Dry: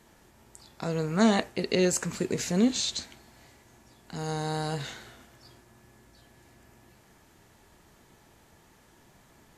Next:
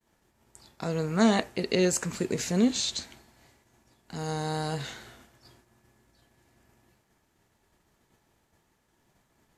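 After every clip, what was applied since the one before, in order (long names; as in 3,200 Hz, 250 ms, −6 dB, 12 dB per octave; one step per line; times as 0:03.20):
downward expander −50 dBFS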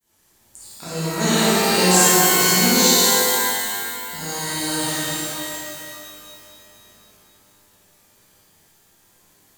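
first-order pre-emphasis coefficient 0.8
flutter between parallel walls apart 9.4 metres, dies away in 0.71 s
reverb with rising layers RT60 2.4 s, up +12 semitones, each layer −2 dB, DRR −9 dB
level +7 dB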